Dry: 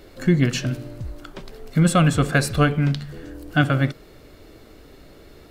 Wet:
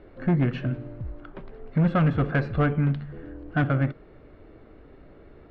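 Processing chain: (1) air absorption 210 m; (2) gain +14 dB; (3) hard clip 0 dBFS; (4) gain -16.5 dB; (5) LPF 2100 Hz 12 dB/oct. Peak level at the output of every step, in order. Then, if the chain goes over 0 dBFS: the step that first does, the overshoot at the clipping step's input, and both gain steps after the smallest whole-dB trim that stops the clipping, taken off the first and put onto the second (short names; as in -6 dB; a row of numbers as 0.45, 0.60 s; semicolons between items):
-5.5, +8.5, 0.0, -16.5, -16.0 dBFS; step 2, 8.5 dB; step 2 +5 dB, step 4 -7.5 dB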